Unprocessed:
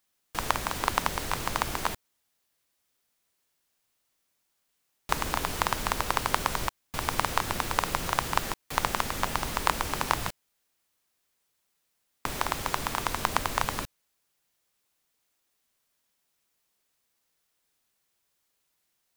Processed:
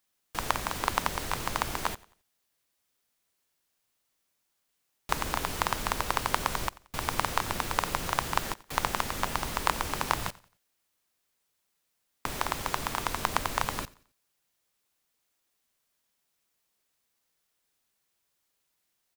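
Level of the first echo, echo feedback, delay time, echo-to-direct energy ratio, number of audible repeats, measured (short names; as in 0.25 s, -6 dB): -21.5 dB, 36%, 89 ms, -21.0 dB, 2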